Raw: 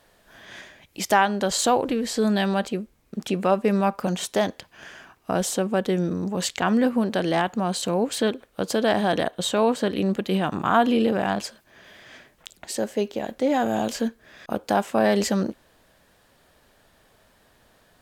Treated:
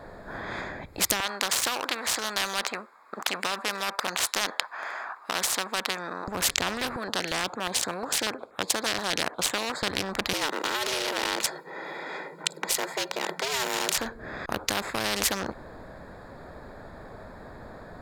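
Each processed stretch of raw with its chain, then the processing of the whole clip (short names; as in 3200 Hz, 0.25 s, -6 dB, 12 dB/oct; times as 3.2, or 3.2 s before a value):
1.2–6.28 de-esser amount 50% + resonant high-pass 1100 Hz, resonance Q 2.5
6.96–9.83 weighting filter A + stepped notch 8.4 Hz 880–4600 Hz
10.33–13.98 frequency shift +140 Hz + comb 2.1 ms, depth 73%
whole clip: Wiener smoothing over 15 samples; maximiser +13 dB; spectral compressor 4:1; gain -1 dB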